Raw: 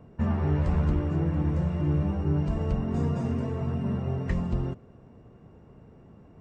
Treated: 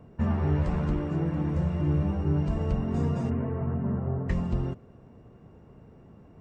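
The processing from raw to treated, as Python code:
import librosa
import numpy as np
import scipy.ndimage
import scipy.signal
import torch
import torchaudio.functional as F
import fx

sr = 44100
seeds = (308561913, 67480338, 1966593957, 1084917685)

y = fx.peak_eq(x, sr, hz=80.0, db=-9.0, octaves=0.54, at=(0.63, 1.56))
y = fx.lowpass(y, sr, hz=fx.line((3.29, 2400.0), (4.28, 1500.0)), slope=24, at=(3.29, 4.28), fade=0.02)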